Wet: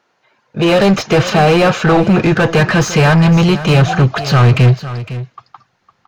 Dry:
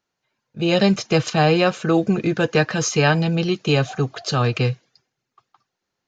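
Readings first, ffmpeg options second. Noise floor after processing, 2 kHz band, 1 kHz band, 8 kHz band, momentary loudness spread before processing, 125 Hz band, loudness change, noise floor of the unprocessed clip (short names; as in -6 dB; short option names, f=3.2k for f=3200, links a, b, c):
-62 dBFS, +8.0 dB, +9.0 dB, n/a, 6 LU, +11.0 dB, +8.0 dB, -81 dBFS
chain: -filter_complex "[0:a]asubboost=boost=9.5:cutoff=120,asplit=2[a][b];[b]highpass=f=720:p=1,volume=30dB,asoftclip=type=tanh:threshold=-2dB[c];[a][c]amix=inputs=2:normalize=0,lowpass=f=1.1k:p=1,volume=-6dB,aecho=1:1:508:0.2,volume=1dB"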